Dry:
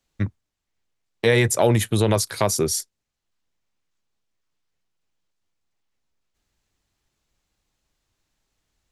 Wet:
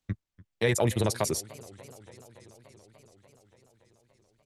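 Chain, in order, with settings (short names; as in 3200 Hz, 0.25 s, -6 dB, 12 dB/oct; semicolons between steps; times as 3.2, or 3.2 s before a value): tempo 2×; warbling echo 0.289 s, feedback 77%, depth 190 cents, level -21.5 dB; gain -6.5 dB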